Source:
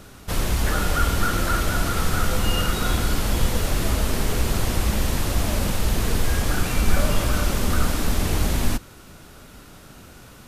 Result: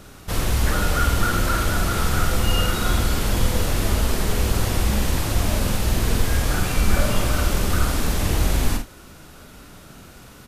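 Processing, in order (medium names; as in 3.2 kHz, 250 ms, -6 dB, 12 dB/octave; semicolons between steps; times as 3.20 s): early reflections 48 ms -6 dB, 76 ms -15 dB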